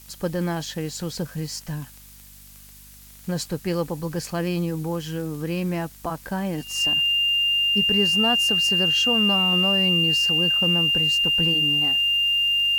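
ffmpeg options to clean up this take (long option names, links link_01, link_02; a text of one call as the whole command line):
ffmpeg -i in.wav -af "adeclick=threshold=4,bandreject=frequency=49.5:width_type=h:width=4,bandreject=frequency=99:width_type=h:width=4,bandreject=frequency=148.5:width_type=h:width=4,bandreject=frequency=198:width_type=h:width=4,bandreject=frequency=247.5:width_type=h:width=4,bandreject=frequency=2800:width=30,afftdn=noise_reduction=23:noise_floor=-46" out.wav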